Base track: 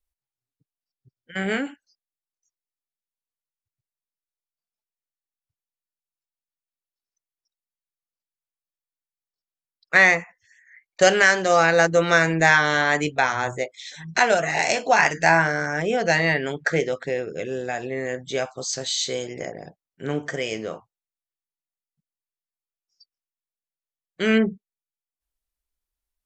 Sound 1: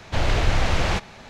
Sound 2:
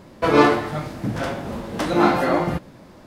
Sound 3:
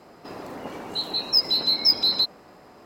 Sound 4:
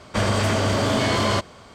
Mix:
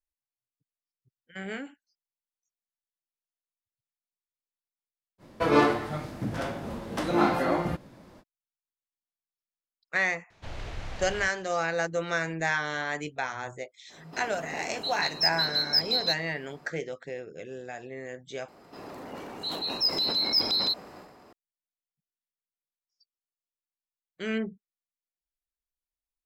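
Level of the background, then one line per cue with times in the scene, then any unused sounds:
base track −11.5 dB
0:05.18: mix in 2 −6.5 dB, fades 0.05 s
0:10.30: mix in 1 −17.5 dB
0:13.88: mix in 3 −5.5 dB, fades 0.05 s
0:18.48: overwrite with 3 −5 dB + transient designer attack −2 dB, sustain +8 dB
not used: 4

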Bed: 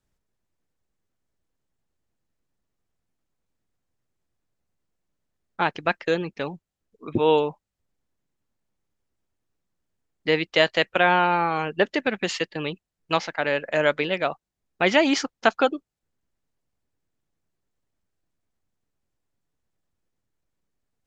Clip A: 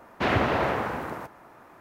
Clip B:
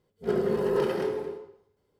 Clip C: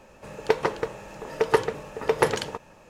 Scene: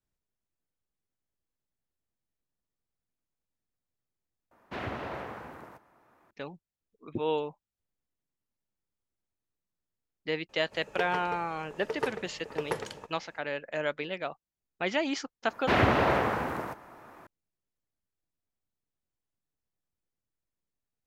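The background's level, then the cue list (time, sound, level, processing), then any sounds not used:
bed −10.5 dB
0:04.51: overwrite with A −13 dB
0:10.49: mix in C −11.5 dB
0:15.47: mix in A
not used: B

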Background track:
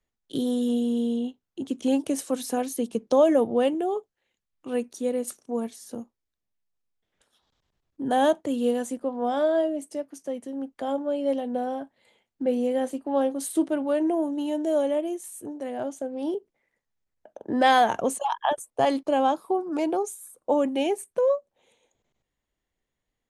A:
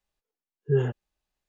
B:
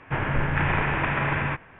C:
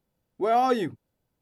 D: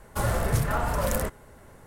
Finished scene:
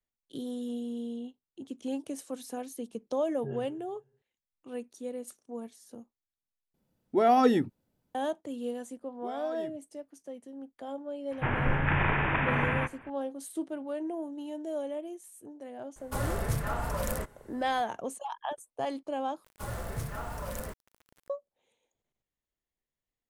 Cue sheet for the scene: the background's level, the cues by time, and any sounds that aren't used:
background track −11 dB
0:02.74: mix in A −16.5 dB + comb and all-pass reverb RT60 1.2 s, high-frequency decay 0.75×, pre-delay 30 ms, DRR 11.5 dB
0:06.74: overwrite with C −1.5 dB + parametric band 230 Hz +7 dB 1.2 octaves
0:08.82: mix in C −15.5 dB + brickwall limiter −20 dBFS
0:11.31: mix in B −3 dB
0:15.96: mix in D −6 dB
0:19.44: overwrite with D −11.5 dB + bit reduction 7 bits

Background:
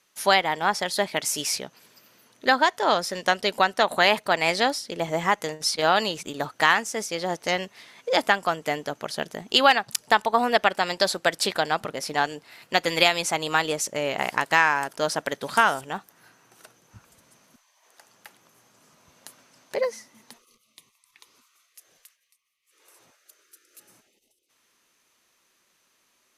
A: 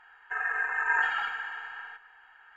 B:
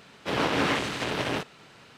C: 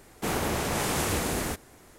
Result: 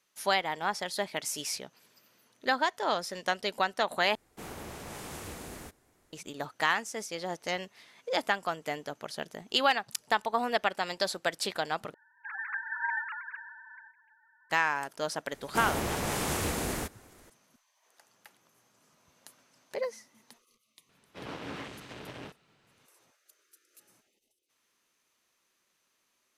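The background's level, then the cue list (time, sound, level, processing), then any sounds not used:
background −8 dB
0:04.15: overwrite with C −14.5 dB
0:11.94: overwrite with A −7 dB + three sine waves on the formant tracks
0:15.32: mix in C −3.5 dB
0:20.89: mix in B −16.5 dB + low-shelf EQ 260 Hz +4.5 dB

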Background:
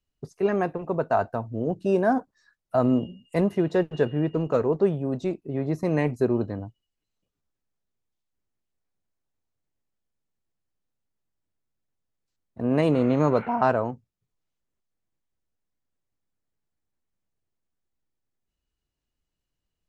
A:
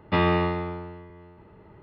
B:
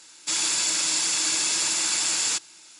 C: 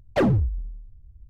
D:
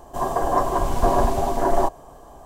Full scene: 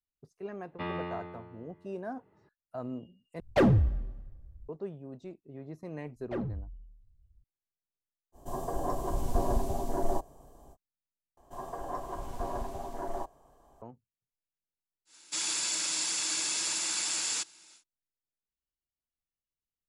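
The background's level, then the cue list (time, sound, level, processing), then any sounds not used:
background −17 dB
0:00.67: mix in A −14 dB + band-pass filter 110–4,100 Hz
0:03.40: overwrite with C −2.5 dB + dense smooth reverb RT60 1.2 s, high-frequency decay 0.9×, DRR 17 dB
0:06.15: mix in C −15.5 dB + low-pass filter 1,900 Hz 6 dB per octave
0:08.32: mix in D −7 dB, fades 0.05 s + parametric band 1,600 Hz −10.5 dB 2.8 octaves
0:11.37: overwrite with D −17 dB
0:15.05: mix in B −7.5 dB, fades 0.10 s + high-pass filter 110 Hz

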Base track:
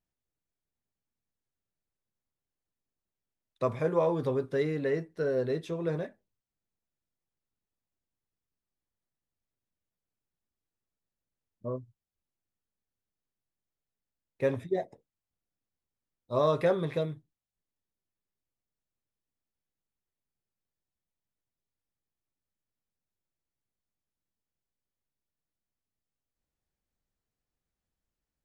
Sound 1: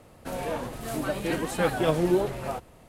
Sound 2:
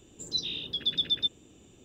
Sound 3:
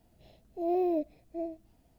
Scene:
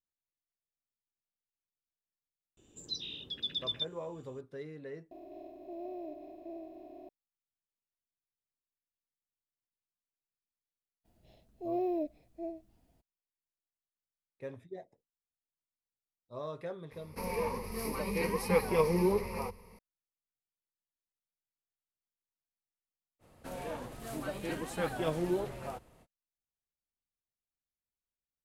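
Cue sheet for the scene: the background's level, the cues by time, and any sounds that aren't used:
base track −15 dB
0:02.57: mix in 2 −8 dB
0:05.11: overwrite with 3 −17 dB + compressor on every frequency bin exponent 0.2
0:11.04: mix in 3 −4.5 dB, fades 0.02 s
0:16.91: mix in 1 −6.5 dB + EQ curve with evenly spaced ripples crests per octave 0.86, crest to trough 17 dB
0:23.19: mix in 1 −9 dB, fades 0.05 s

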